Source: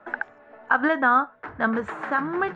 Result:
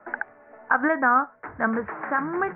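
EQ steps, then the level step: Chebyshev low-pass 2.2 kHz, order 4; 0.0 dB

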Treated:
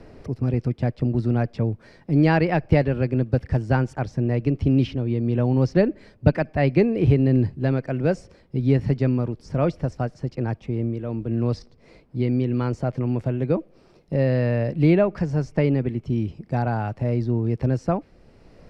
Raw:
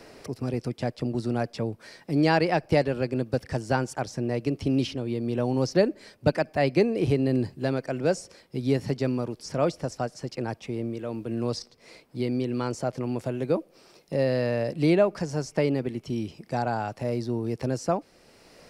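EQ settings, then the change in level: RIAA curve playback; dynamic bell 2.2 kHz, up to +7 dB, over -42 dBFS, Q 0.78; -2.0 dB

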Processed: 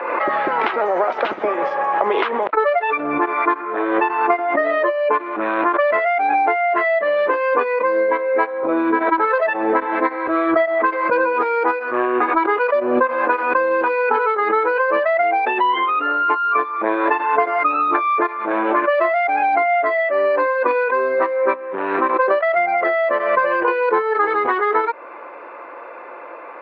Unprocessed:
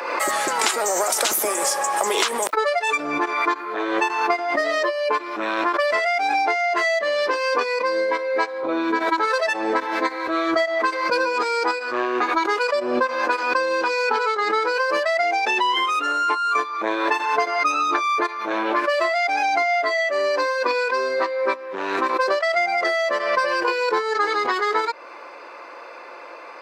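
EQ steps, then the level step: Bessel low-pass 1.7 kHz, order 6; +5.0 dB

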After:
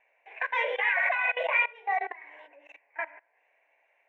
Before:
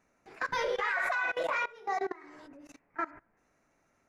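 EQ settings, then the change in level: brick-wall FIR high-pass 300 Hz; resonant low-pass 2.6 kHz, resonance Q 2.5; static phaser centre 1.3 kHz, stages 6; +4.0 dB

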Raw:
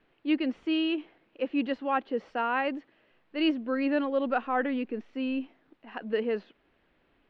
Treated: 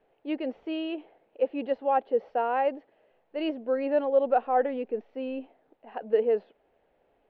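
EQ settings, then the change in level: distance through air 130 m; high-order bell 600 Hz +12 dB 1.3 oct; -5.5 dB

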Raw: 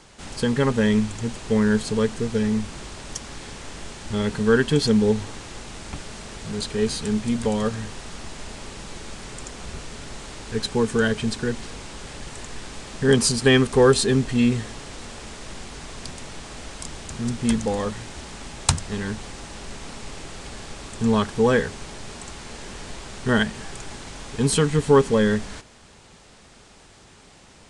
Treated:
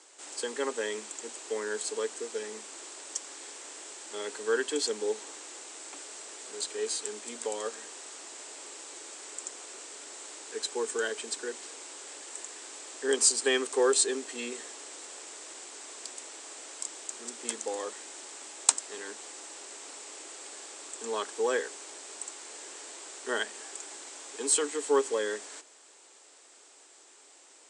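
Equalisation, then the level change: steep high-pass 300 Hz 48 dB/octave; resonant low-pass 7.9 kHz, resonance Q 4.7; -9.0 dB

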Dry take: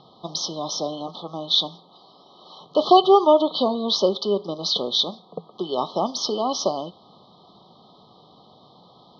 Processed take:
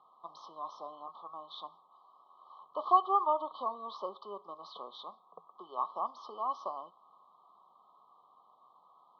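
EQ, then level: band-pass filter 1.1 kHz, Q 6.6; distance through air 96 m; 0.0 dB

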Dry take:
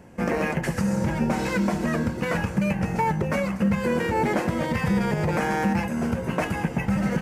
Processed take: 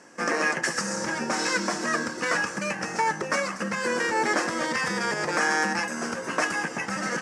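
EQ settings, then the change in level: tone controls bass -12 dB, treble +13 dB; cabinet simulation 160–8600 Hz, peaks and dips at 300 Hz +6 dB, 1.2 kHz +9 dB, 1.7 kHz +9 dB, 5.4 kHz +7 dB; -2.5 dB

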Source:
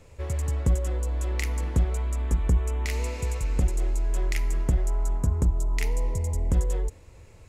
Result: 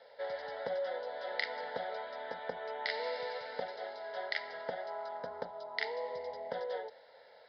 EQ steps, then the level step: ladder high-pass 380 Hz, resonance 30%; rippled Chebyshev low-pass 5.1 kHz, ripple 3 dB; static phaser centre 1.7 kHz, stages 8; +11.0 dB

